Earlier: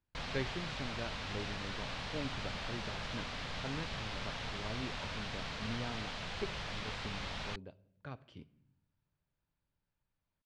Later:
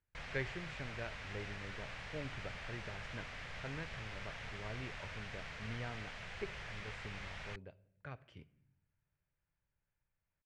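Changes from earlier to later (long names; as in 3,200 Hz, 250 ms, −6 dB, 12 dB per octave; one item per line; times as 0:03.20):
background −5.0 dB
master: add octave-band graphic EQ 250/1,000/2,000/4,000 Hz −8/−4/+6/−8 dB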